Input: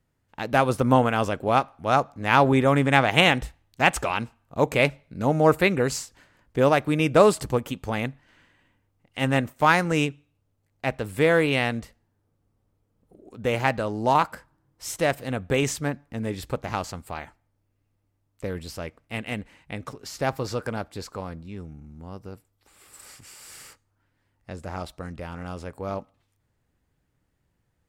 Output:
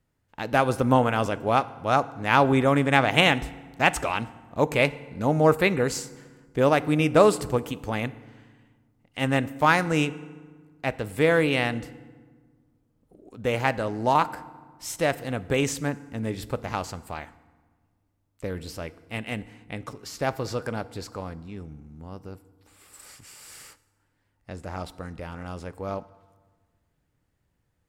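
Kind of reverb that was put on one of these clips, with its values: FDN reverb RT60 1.5 s, low-frequency decay 1.4×, high-frequency decay 0.65×, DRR 16 dB; gain -1 dB

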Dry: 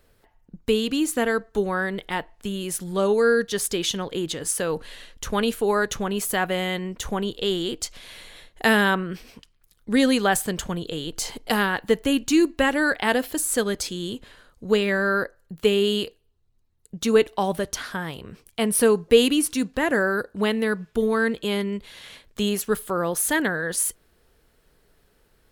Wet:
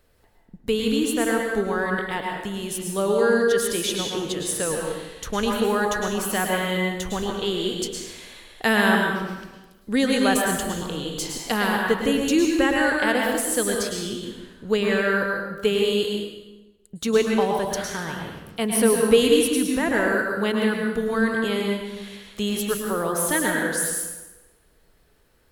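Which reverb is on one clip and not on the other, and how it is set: plate-style reverb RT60 1.1 s, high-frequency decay 0.8×, pre-delay 95 ms, DRR 0 dB; gain -2 dB

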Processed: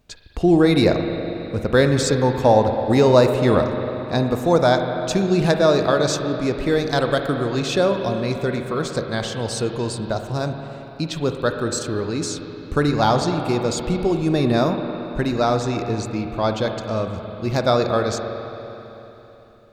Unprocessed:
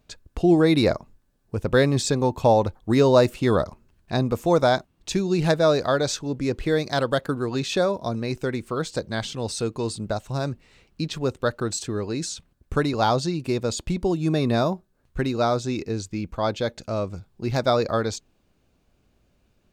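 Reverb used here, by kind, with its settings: spring tank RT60 3.5 s, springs 41/55 ms, chirp 20 ms, DRR 5 dB; gain +2.5 dB

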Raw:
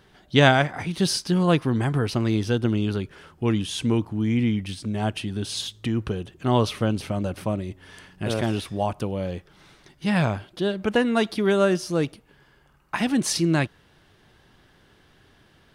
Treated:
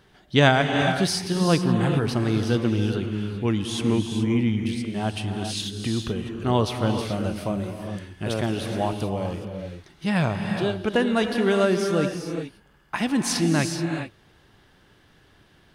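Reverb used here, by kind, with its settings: non-linear reverb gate 0.45 s rising, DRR 4.5 dB; gain -1 dB

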